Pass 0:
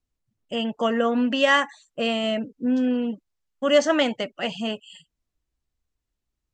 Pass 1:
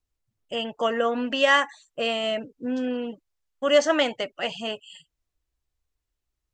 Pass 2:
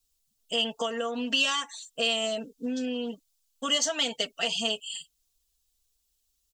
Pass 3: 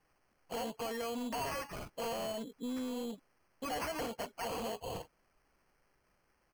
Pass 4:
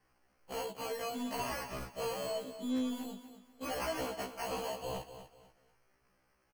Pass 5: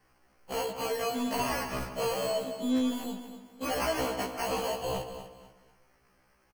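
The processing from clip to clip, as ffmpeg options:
-af "equalizer=f=210:t=o:w=0.82:g=-9"
-af "aecho=1:1:4.4:0.96,acompressor=threshold=0.0708:ratio=12,aexciter=amount=3.4:drive=8.1:freq=2900,volume=0.596"
-af "acrusher=samples=12:mix=1:aa=0.000001,asoftclip=type=tanh:threshold=0.0473,alimiter=level_in=2.99:limit=0.0631:level=0:latency=1:release=76,volume=0.335"
-af "aecho=1:1:244|488|732:0.266|0.0772|0.0224,afftfilt=real='re*1.73*eq(mod(b,3),0)':imag='im*1.73*eq(mod(b,3),0)':win_size=2048:overlap=0.75,volume=1.41"
-filter_complex "[0:a]asplit=2[s0][s1];[s1]adelay=152,lowpass=f=2600:p=1,volume=0.299,asplit=2[s2][s3];[s3]adelay=152,lowpass=f=2600:p=1,volume=0.46,asplit=2[s4][s5];[s5]adelay=152,lowpass=f=2600:p=1,volume=0.46,asplit=2[s6][s7];[s7]adelay=152,lowpass=f=2600:p=1,volume=0.46,asplit=2[s8][s9];[s9]adelay=152,lowpass=f=2600:p=1,volume=0.46[s10];[s0][s2][s4][s6][s8][s10]amix=inputs=6:normalize=0,volume=2.11"

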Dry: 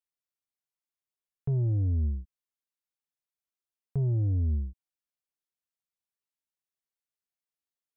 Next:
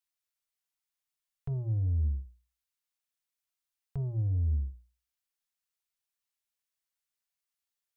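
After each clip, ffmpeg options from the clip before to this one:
-af "equalizer=f=260:t=o:w=2.6:g=-15,bandreject=f=60:t=h:w=6,bandreject=f=120:t=h:w=6,bandreject=f=180:t=h:w=6,bandreject=f=240:t=h:w=6,bandreject=f=300:t=h:w=6,bandreject=f=360:t=h:w=6,bandreject=f=420:t=h:w=6,bandreject=f=480:t=h:w=6,volume=1.68"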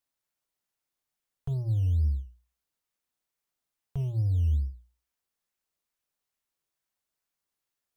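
-filter_complex "[0:a]equalizer=f=290:w=1.5:g=-4,asplit=2[s0][s1];[s1]acrusher=samples=12:mix=1:aa=0.000001:lfo=1:lforange=7.2:lforate=2.3,volume=0.335[s2];[s0][s2]amix=inputs=2:normalize=0,volume=1.12"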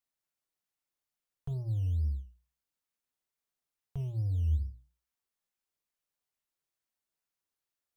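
-af "flanger=delay=4.3:depth=9.6:regen=85:speed=0.58:shape=sinusoidal"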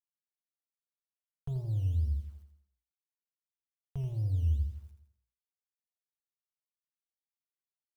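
-filter_complex "[0:a]acrusher=bits=11:mix=0:aa=0.000001,asplit=2[s0][s1];[s1]aecho=0:1:83|166|249|332|415|498:0.355|0.177|0.0887|0.0444|0.0222|0.0111[s2];[s0][s2]amix=inputs=2:normalize=0"

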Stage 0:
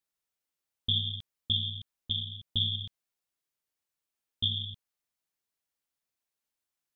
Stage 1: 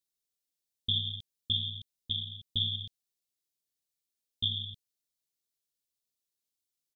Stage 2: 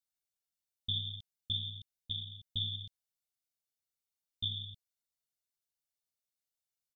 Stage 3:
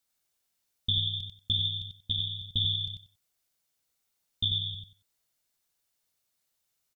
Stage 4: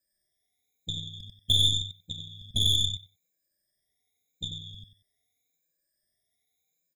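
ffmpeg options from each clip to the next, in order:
-af "firequalizer=gain_entry='entry(430,0);entry(1000,-13);entry(3800,4)':delay=0.05:min_phase=1,volume=0.708"
-af "aecho=1:1:1.4:0.58,volume=0.473"
-filter_complex "[0:a]asplit=2[s0][s1];[s1]acompressor=threshold=0.00794:ratio=6,volume=1.19[s2];[s0][s2]amix=inputs=2:normalize=0,aecho=1:1:93|186|279:0.631|0.114|0.0204,volume=1.58"
-af "afftfilt=real='re*pow(10,19/40*sin(2*PI*(1.3*log(max(b,1)*sr/1024/100)/log(2)-(0.85)*(pts-256)/sr)))':imag='im*pow(10,19/40*sin(2*PI*(1.3*log(max(b,1)*sr/1024/100)/log(2)-(0.85)*(pts-256)/sr)))':win_size=1024:overlap=0.75,aeval=exprs='0.335*(cos(1*acos(clip(val(0)/0.335,-1,1)))-cos(1*PI/2))+0.0376*(cos(8*acos(clip(val(0)/0.335,-1,1)))-cos(8*PI/2))':c=same,afftfilt=real='re*eq(mod(floor(b*sr/1024/810),2),0)':imag='im*eq(mod(floor(b*sr/1024/810),2),0)':win_size=1024:overlap=0.75,volume=0.794"

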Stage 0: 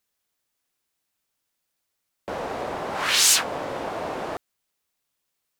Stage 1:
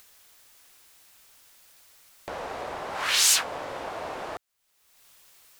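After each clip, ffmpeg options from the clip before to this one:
-af "equalizer=f=210:t=o:w=2.3:g=-7.5,acompressor=mode=upward:threshold=0.0224:ratio=2.5,volume=0.75"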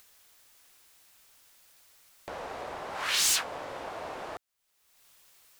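-af "aeval=exprs='0.188*(abs(mod(val(0)/0.188+3,4)-2)-1)':c=same,volume=0.631"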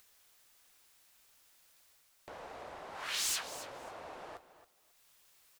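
-af "areverse,acompressor=mode=upward:threshold=0.00282:ratio=2.5,areverse,flanger=delay=0:depth=9.2:regen=-62:speed=1.5:shape=triangular,aecho=1:1:273|546:0.2|0.0339,volume=0.596"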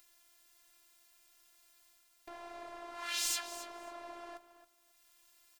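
-af "afftfilt=real='hypot(re,im)*cos(PI*b)':imag='0':win_size=512:overlap=0.75,volume=1.41"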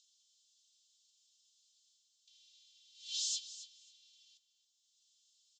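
-af "asuperpass=centerf=4900:order=12:qfactor=1.1"

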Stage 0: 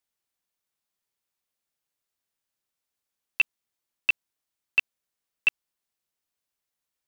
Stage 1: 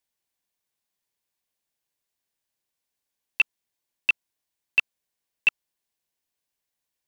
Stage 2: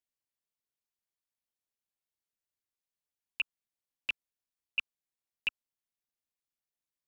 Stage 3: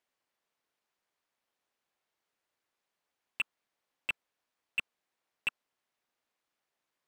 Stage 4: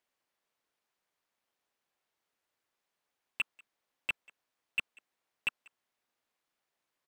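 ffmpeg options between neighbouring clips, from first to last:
-af "bandreject=f=1300:w=6.5,volume=1.19"
-af "lowshelf=f=110:g=6.5,tremolo=f=240:d=1,volume=0.398"
-filter_complex "[0:a]asplit=2[s0][s1];[s1]highpass=f=720:p=1,volume=10,asoftclip=type=tanh:threshold=0.126[s2];[s0][s2]amix=inputs=2:normalize=0,lowpass=f=1100:p=1,volume=0.501,volume=1.68"
-filter_complex "[0:a]asplit=2[s0][s1];[s1]adelay=190,highpass=300,lowpass=3400,asoftclip=type=hard:threshold=0.0376,volume=0.0794[s2];[s0][s2]amix=inputs=2:normalize=0"

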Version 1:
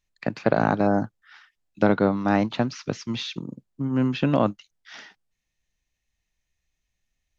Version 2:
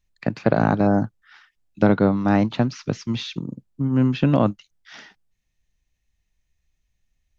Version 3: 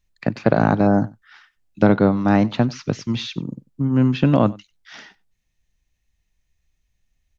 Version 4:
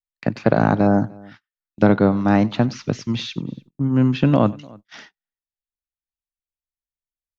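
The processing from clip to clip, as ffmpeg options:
-af "lowshelf=f=210:g=8.5"
-af "aecho=1:1:94:0.0708,volume=1.26"
-filter_complex "[0:a]asplit=2[s0][s1];[s1]adelay=297.4,volume=0.0562,highshelf=f=4000:g=-6.69[s2];[s0][s2]amix=inputs=2:normalize=0,agate=range=0.0224:threshold=0.00794:ratio=16:detection=peak"

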